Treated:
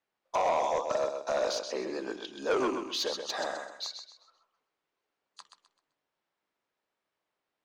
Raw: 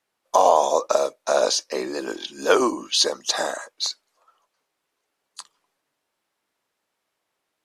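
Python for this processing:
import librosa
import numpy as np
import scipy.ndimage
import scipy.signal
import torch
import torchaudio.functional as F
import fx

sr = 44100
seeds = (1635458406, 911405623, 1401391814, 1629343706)

y = fx.rattle_buzz(x, sr, strikes_db=-32.0, level_db=-25.0)
y = scipy.signal.sosfilt(scipy.signal.butter(2, 6500.0, 'lowpass', fs=sr, output='sos'), y)
y = fx.echo_feedback(y, sr, ms=129, feedback_pct=31, wet_db=-8)
y = 10.0 ** (-14.5 / 20.0) * np.tanh(y / 10.0 ** (-14.5 / 20.0))
y = fx.high_shelf(y, sr, hz=4200.0, db=-6.5)
y = y * librosa.db_to_amplitude(-7.0)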